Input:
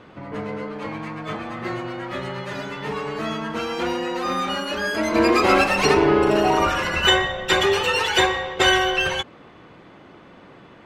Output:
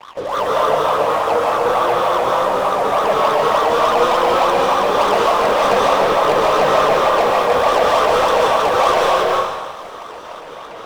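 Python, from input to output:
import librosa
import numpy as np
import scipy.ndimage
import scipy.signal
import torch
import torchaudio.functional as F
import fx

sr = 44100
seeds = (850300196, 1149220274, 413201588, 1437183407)

p1 = fx.spec_clip(x, sr, under_db=22)
p2 = fx.wah_lfo(p1, sr, hz=3.4, low_hz=460.0, high_hz=1200.0, q=15.0)
p3 = fx.over_compress(p2, sr, threshold_db=-35.0, ratio=-0.5)
p4 = fx.riaa(p3, sr, side='playback')
p5 = fx.leveller(p4, sr, passes=5)
p6 = p5 + fx.echo_wet_highpass(p5, sr, ms=496, feedback_pct=66, hz=5500.0, wet_db=-17.0, dry=0)
p7 = fx.rev_freeverb(p6, sr, rt60_s=1.4, hf_ratio=0.95, predelay_ms=100, drr_db=-3.5)
y = F.gain(torch.from_numpy(p7), 7.0).numpy()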